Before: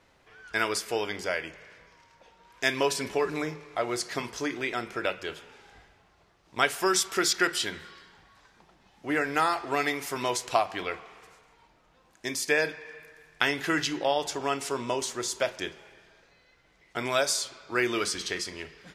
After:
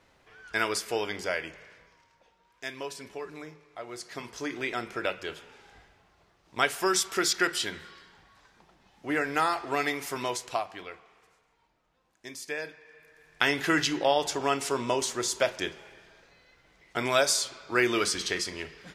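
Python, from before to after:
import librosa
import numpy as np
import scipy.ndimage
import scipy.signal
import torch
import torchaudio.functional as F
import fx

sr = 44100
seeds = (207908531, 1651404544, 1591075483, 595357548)

y = fx.gain(x, sr, db=fx.line((1.59, -0.5), (2.65, -11.5), (3.84, -11.5), (4.62, -1.0), (10.14, -1.0), (10.92, -10.0), (12.88, -10.0), (13.52, 2.0)))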